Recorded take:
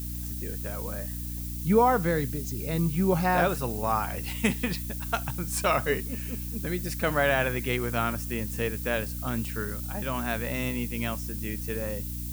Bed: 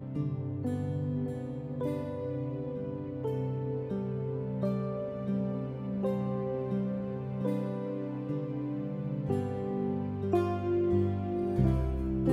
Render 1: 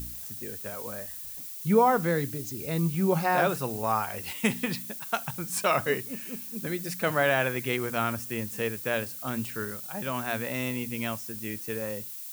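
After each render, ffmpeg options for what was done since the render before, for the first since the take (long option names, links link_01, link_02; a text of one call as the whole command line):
ffmpeg -i in.wav -af "bandreject=frequency=60:width_type=h:width=4,bandreject=frequency=120:width_type=h:width=4,bandreject=frequency=180:width_type=h:width=4,bandreject=frequency=240:width_type=h:width=4,bandreject=frequency=300:width_type=h:width=4" out.wav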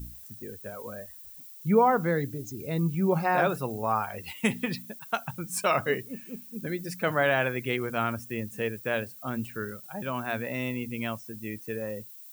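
ffmpeg -i in.wav -af "afftdn=noise_reduction=11:noise_floor=-40" out.wav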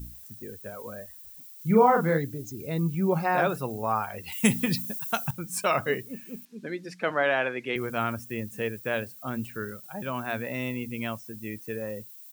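ffmpeg -i in.wav -filter_complex "[0:a]asplit=3[link_01][link_02][link_03];[link_01]afade=type=out:start_time=1.58:duration=0.02[link_04];[link_02]asplit=2[link_05][link_06];[link_06]adelay=37,volume=-3dB[link_07];[link_05][link_07]amix=inputs=2:normalize=0,afade=type=in:start_time=1.58:duration=0.02,afade=type=out:start_time=2.17:duration=0.02[link_08];[link_03]afade=type=in:start_time=2.17:duration=0.02[link_09];[link_04][link_08][link_09]amix=inputs=3:normalize=0,asettb=1/sr,asplit=3[link_10][link_11][link_12];[link_10]atrim=end=4.324[link_13];[link_11]atrim=start=4.32:end=5.31,asetpts=PTS-STARTPTS,afade=type=in:duration=0.004:curve=qsin,afade=type=out:start_time=0.986:duration=0.004:curve=qsin,bass=frequency=250:gain=8,treble=frequency=4000:gain=11[link_14];[link_12]atrim=start=5.306[link_15];[link_13][link_14]acrossfade=duration=0.004:curve1=hsin:curve2=qsin[link_16];[link_16][link_15]acrossfade=duration=0.004:curve1=qsin:curve2=hsin,asettb=1/sr,asplit=3[link_17][link_18][link_19];[link_17]atrim=end=6.454[link_20];[link_18]atrim=start=6.45:end=7.76,asetpts=PTS-STARTPTS,afade=type=in:duration=0.004:curve=qsin,afade=type=out:start_time=1.306:duration=0.004:curve=qsin,highpass=250,lowpass=4700[link_21];[link_19]atrim=start=7.756[link_22];[link_20][link_21]acrossfade=duration=0.004:curve1=hsin:curve2=qsin[link_23];[link_23][link_22]acrossfade=duration=0.004:curve1=qsin:curve2=hsin" out.wav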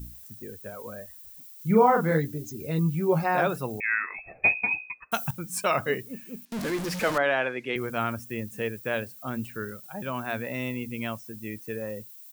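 ffmpeg -i in.wav -filter_complex "[0:a]asettb=1/sr,asplit=3[link_01][link_02][link_03];[link_01]atrim=end=2.104[link_04];[link_02]atrim=start=2.1:end=3.24,asetpts=PTS-STARTPTS,afade=type=in:duration=0.004:curve=qsin,afade=type=out:start_time=1.136:duration=0.004:curve=qsin,asplit=2[link_05][link_06];[link_06]adelay=13,volume=-6dB[link_07];[link_05][link_07]amix=inputs=2:normalize=0,atrim=end_sample=50274[link_08];[link_03]atrim=start=3.236[link_09];[link_04][link_08]acrossfade=duration=0.004:curve1=hsin:curve2=qsin[link_10];[link_10][link_09]acrossfade=duration=0.004:curve1=qsin:curve2=hsin,asettb=1/sr,asplit=3[link_11][link_12][link_13];[link_11]atrim=end=3.804[link_14];[link_12]atrim=start=3.8:end=5.12,asetpts=PTS-STARTPTS,afade=type=in:duration=0.004:curve=qsin,afade=type=out:start_time=1.316:duration=0.004:curve=qsin,lowpass=frequency=2300:width_type=q:width=0.5098,lowpass=frequency=2300:width_type=q:width=0.6013,lowpass=frequency=2300:width_type=q:width=0.9,lowpass=frequency=2300:width_type=q:width=2.563,afreqshift=-2700[link_15];[link_13]atrim=start=5.116[link_16];[link_14][link_15]acrossfade=duration=0.004:curve1=hsin:curve2=qsin[link_17];[link_17][link_16]acrossfade=duration=0.004:curve1=qsin:curve2=hsin,asettb=1/sr,asplit=3[link_18][link_19][link_20];[link_18]atrim=end=6.524[link_21];[link_19]atrim=start=6.52:end=7.18,asetpts=PTS-STARTPTS,afade=type=in:duration=0.004:curve=qsin,afade=type=out:start_time=0.656:duration=0.004:curve=qsin,aeval=exprs='val(0)+0.5*0.0422*sgn(val(0))':channel_layout=same[link_22];[link_20]atrim=start=7.176[link_23];[link_21][link_22]acrossfade=duration=0.004:curve1=hsin:curve2=qsin[link_24];[link_24][link_23]acrossfade=duration=0.004:curve1=qsin:curve2=hsin" out.wav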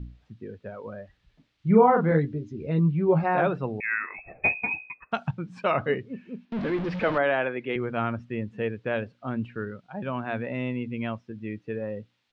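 ffmpeg -i in.wav -af "lowpass=frequency=3500:width=0.5412,lowpass=frequency=3500:width=1.3066,tiltshelf=frequency=970:gain=3" out.wav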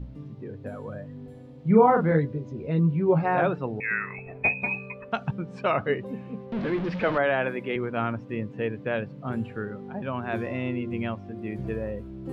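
ffmpeg -i in.wav -i bed.wav -filter_complex "[1:a]volume=-8.5dB[link_01];[0:a][link_01]amix=inputs=2:normalize=0" out.wav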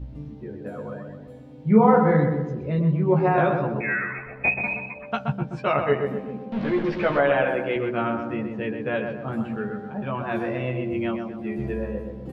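ffmpeg -i in.wav -filter_complex "[0:a]asplit=2[link_01][link_02];[link_02]adelay=14,volume=-3dB[link_03];[link_01][link_03]amix=inputs=2:normalize=0,asplit=2[link_04][link_05];[link_05]adelay=126,lowpass=frequency=1700:poles=1,volume=-4.5dB,asplit=2[link_06][link_07];[link_07]adelay=126,lowpass=frequency=1700:poles=1,volume=0.52,asplit=2[link_08][link_09];[link_09]adelay=126,lowpass=frequency=1700:poles=1,volume=0.52,asplit=2[link_10][link_11];[link_11]adelay=126,lowpass=frequency=1700:poles=1,volume=0.52,asplit=2[link_12][link_13];[link_13]adelay=126,lowpass=frequency=1700:poles=1,volume=0.52,asplit=2[link_14][link_15];[link_15]adelay=126,lowpass=frequency=1700:poles=1,volume=0.52,asplit=2[link_16][link_17];[link_17]adelay=126,lowpass=frequency=1700:poles=1,volume=0.52[link_18];[link_06][link_08][link_10][link_12][link_14][link_16][link_18]amix=inputs=7:normalize=0[link_19];[link_04][link_19]amix=inputs=2:normalize=0" out.wav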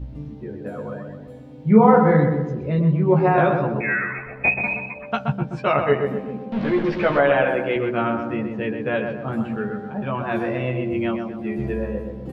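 ffmpeg -i in.wav -af "volume=3dB" out.wav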